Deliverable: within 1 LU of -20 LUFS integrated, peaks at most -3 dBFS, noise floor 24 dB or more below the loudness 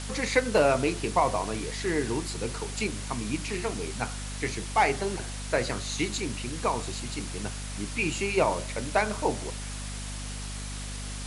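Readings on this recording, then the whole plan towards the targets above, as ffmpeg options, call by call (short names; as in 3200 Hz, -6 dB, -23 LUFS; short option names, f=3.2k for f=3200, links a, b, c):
hum 50 Hz; harmonics up to 250 Hz; hum level -35 dBFS; noise floor -36 dBFS; noise floor target -54 dBFS; loudness -29.5 LUFS; peak -9.0 dBFS; loudness target -20.0 LUFS
-> -af "bandreject=f=50:t=h:w=4,bandreject=f=100:t=h:w=4,bandreject=f=150:t=h:w=4,bandreject=f=200:t=h:w=4,bandreject=f=250:t=h:w=4"
-af "afftdn=nr=18:nf=-36"
-af "volume=9.5dB,alimiter=limit=-3dB:level=0:latency=1"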